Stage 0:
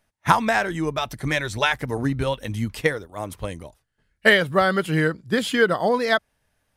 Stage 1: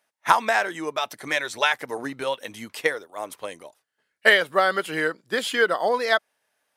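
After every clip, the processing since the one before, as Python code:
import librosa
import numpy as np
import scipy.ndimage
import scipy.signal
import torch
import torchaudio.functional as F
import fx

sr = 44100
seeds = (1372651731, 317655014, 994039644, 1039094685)

y = scipy.signal.sosfilt(scipy.signal.butter(2, 440.0, 'highpass', fs=sr, output='sos'), x)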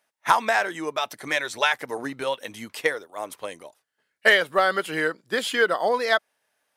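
y = 10.0 ** (-4.0 / 20.0) * np.tanh(x / 10.0 ** (-4.0 / 20.0))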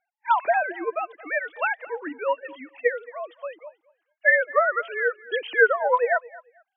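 y = fx.sine_speech(x, sr)
y = fx.echo_feedback(y, sr, ms=222, feedback_pct=20, wet_db=-21)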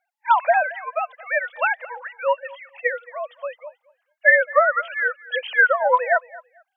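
y = fx.brickwall_highpass(x, sr, low_hz=490.0)
y = y * librosa.db_to_amplitude(4.0)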